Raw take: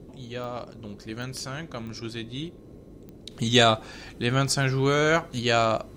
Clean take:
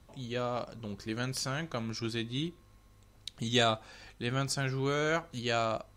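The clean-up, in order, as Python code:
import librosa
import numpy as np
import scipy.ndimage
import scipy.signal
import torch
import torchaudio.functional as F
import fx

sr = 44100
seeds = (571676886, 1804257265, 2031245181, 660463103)

y = fx.fix_declick_ar(x, sr, threshold=10.0)
y = fx.noise_reduce(y, sr, print_start_s=2.5, print_end_s=3.0, reduce_db=13.0)
y = fx.gain(y, sr, db=fx.steps((0.0, 0.0), (3.31, -8.5)))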